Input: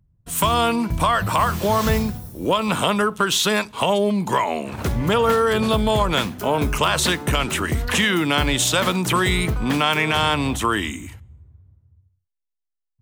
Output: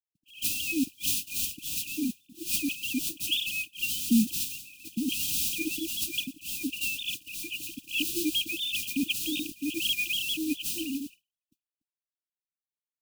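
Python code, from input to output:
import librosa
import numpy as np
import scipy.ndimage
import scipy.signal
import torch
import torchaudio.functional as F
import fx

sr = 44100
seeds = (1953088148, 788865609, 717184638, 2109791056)

y = fx.sine_speech(x, sr)
y = fx.mod_noise(y, sr, seeds[0], snr_db=12)
y = fx.brickwall_bandstop(y, sr, low_hz=330.0, high_hz=2400.0)
y = y * 10.0 ** (-3.0 / 20.0)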